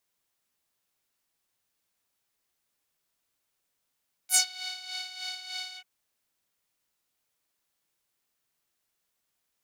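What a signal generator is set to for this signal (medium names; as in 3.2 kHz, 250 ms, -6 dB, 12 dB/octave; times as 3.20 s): synth patch with tremolo F#5, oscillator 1 saw, interval +19 st, sub -20 dB, noise -16 dB, filter bandpass, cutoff 2.4 kHz, Q 2.8, filter envelope 2.5 oct, filter decay 0.15 s, filter sustain 30%, attack 62 ms, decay 0.10 s, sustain -19.5 dB, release 0.07 s, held 1.47 s, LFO 3.3 Hz, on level 9.5 dB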